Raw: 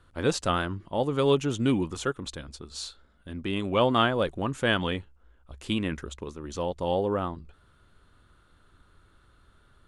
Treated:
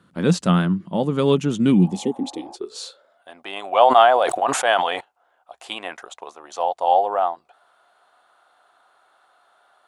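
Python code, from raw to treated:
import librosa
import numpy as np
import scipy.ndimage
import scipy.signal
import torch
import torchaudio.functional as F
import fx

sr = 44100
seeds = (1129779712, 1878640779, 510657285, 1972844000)

y = fx.filter_sweep_highpass(x, sr, from_hz=180.0, to_hz=730.0, start_s=1.86, end_s=3.25, q=7.5)
y = fx.spec_repair(y, sr, seeds[0], start_s=1.82, length_s=0.71, low_hz=530.0, high_hz=1800.0, source='before')
y = fx.sustainer(y, sr, db_per_s=45.0, at=(3.69, 4.99), fade=0.02)
y = F.gain(torch.from_numpy(y), 2.5).numpy()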